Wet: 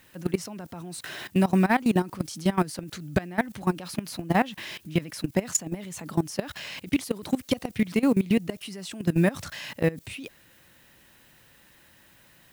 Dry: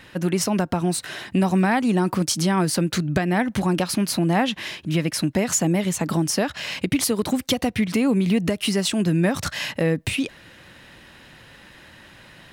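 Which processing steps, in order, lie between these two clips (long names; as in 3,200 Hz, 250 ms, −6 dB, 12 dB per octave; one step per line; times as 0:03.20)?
background noise blue −49 dBFS
output level in coarse steps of 19 dB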